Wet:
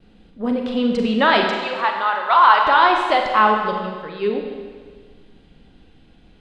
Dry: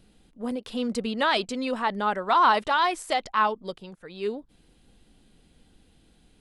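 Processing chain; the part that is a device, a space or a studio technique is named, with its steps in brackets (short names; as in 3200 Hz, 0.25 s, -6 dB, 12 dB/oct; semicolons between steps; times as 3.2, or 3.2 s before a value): 1.46–2.65 HPF 830 Hz 12 dB/oct; hearing-loss simulation (LPF 3300 Hz 12 dB/oct; expander -58 dBFS); Schroeder reverb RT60 1.6 s, combs from 33 ms, DRR 2 dB; gain +7.5 dB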